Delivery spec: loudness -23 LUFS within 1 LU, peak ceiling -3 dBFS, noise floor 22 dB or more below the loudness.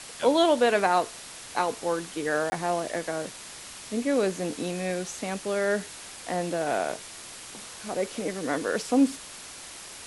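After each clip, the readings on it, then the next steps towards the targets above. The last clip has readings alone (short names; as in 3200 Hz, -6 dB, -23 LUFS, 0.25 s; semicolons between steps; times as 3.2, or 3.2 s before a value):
dropouts 1; longest dropout 20 ms; noise floor -43 dBFS; noise floor target -50 dBFS; loudness -27.5 LUFS; peak -9.0 dBFS; loudness target -23.0 LUFS
-> interpolate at 2.5, 20 ms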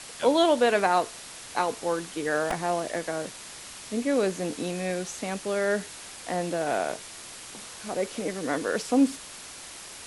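dropouts 0; noise floor -43 dBFS; noise floor target -50 dBFS
-> denoiser 7 dB, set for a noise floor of -43 dBFS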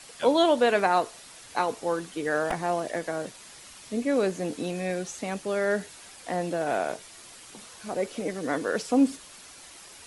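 noise floor -48 dBFS; noise floor target -50 dBFS
-> denoiser 6 dB, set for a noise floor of -48 dBFS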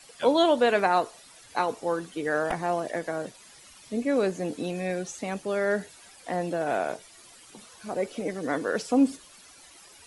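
noise floor -52 dBFS; loudness -27.5 LUFS; peak -9.5 dBFS; loudness target -23.0 LUFS
-> gain +4.5 dB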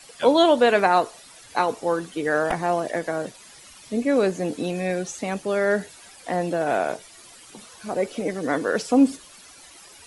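loudness -23.0 LUFS; peak -5.0 dBFS; noise floor -48 dBFS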